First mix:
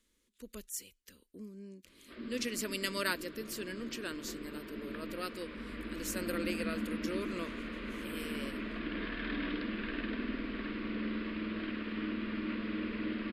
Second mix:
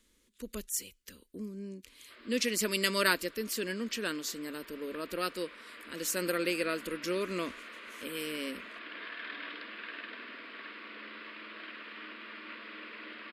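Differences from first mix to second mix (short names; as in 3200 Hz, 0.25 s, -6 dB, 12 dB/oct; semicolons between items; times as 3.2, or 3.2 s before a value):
speech +6.5 dB; background: add HPF 740 Hz 12 dB/oct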